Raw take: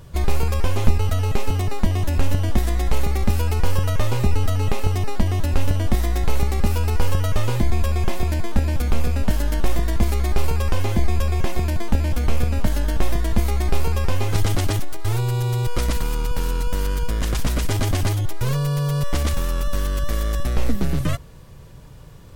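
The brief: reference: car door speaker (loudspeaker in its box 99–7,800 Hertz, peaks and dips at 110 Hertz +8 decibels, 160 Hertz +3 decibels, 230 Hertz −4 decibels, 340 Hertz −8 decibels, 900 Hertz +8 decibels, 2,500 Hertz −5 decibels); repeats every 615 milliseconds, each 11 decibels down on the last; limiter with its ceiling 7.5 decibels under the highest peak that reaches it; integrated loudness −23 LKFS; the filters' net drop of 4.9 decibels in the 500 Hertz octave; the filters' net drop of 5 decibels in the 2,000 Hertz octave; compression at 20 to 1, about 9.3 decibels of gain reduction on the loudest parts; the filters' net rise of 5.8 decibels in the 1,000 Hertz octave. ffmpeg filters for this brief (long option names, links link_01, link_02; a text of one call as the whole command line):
ffmpeg -i in.wav -af "equalizer=frequency=500:width_type=o:gain=-6,equalizer=frequency=1000:width_type=o:gain=5,equalizer=frequency=2000:width_type=o:gain=-6.5,acompressor=threshold=-15dB:ratio=20,alimiter=limit=-15dB:level=0:latency=1,highpass=99,equalizer=frequency=110:width_type=q:width=4:gain=8,equalizer=frequency=160:width_type=q:width=4:gain=3,equalizer=frequency=230:width_type=q:width=4:gain=-4,equalizer=frequency=340:width_type=q:width=4:gain=-8,equalizer=frequency=900:width_type=q:width=4:gain=8,equalizer=frequency=2500:width_type=q:width=4:gain=-5,lowpass=frequency=7800:width=0.5412,lowpass=frequency=7800:width=1.3066,aecho=1:1:615|1230|1845:0.282|0.0789|0.0221,volume=4dB" out.wav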